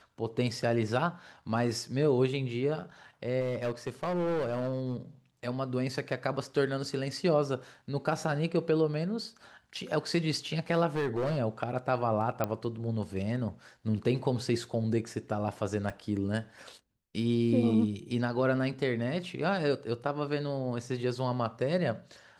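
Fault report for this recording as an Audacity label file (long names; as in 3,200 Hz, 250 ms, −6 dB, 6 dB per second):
3.400000	4.950000	clipping −27 dBFS
10.950000	11.380000	clipping −26.5 dBFS
12.440000	12.440000	click −16 dBFS
15.900000	15.900000	drop-out 3.1 ms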